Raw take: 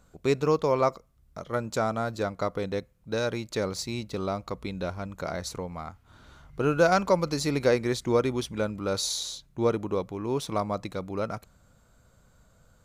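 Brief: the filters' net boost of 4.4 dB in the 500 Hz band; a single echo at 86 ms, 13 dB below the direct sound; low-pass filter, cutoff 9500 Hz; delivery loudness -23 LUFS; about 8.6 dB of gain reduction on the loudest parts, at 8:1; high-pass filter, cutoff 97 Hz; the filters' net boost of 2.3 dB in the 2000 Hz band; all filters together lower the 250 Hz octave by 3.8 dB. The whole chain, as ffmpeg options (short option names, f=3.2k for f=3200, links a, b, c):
-af "highpass=97,lowpass=9.5k,equalizer=f=250:t=o:g=-8.5,equalizer=f=500:t=o:g=7,equalizer=f=2k:t=o:g=3,acompressor=threshold=-21dB:ratio=8,aecho=1:1:86:0.224,volume=6.5dB"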